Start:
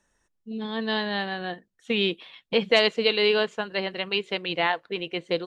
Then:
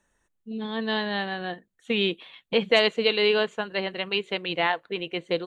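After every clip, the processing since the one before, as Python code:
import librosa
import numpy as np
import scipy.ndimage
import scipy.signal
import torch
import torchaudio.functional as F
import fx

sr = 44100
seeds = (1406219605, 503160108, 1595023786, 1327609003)

y = fx.peak_eq(x, sr, hz=5200.0, db=-12.0, octaves=0.25)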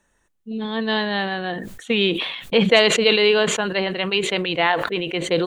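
y = fx.sustainer(x, sr, db_per_s=50.0)
y = F.gain(torch.from_numpy(y), 5.0).numpy()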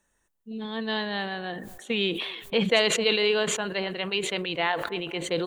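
y = fx.high_shelf(x, sr, hz=7700.0, db=9.0)
y = fx.echo_wet_bandpass(y, sr, ms=235, feedback_pct=45, hz=680.0, wet_db=-18.0)
y = F.gain(torch.from_numpy(y), -7.5).numpy()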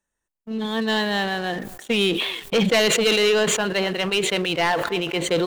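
y = fx.leveller(x, sr, passes=3)
y = F.gain(torch.from_numpy(y), -3.5).numpy()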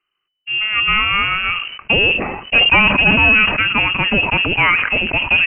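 y = fx.freq_invert(x, sr, carrier_hz=3000)
y = F.gain(torch.from_numpy(y), 7.0).numpy()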